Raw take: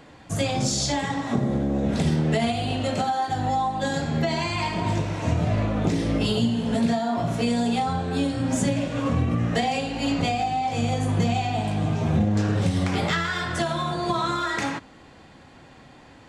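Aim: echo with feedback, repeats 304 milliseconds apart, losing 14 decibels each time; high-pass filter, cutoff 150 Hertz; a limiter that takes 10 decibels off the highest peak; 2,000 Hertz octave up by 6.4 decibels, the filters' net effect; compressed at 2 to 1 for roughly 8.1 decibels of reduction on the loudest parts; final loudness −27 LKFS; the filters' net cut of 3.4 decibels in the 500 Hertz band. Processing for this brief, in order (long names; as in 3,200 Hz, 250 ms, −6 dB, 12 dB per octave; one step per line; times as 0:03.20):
high-pass filter 150 Hz
parametric band 500 Hz −5 dB
parametric band 2,000 Hz +8 dB
downward compressor 2 to 1, threshold −34 dBFS
brickwall limiter −27.5 dBFS
repeating echo 304 ms, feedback 20%, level −14 dB
level +8.5 dB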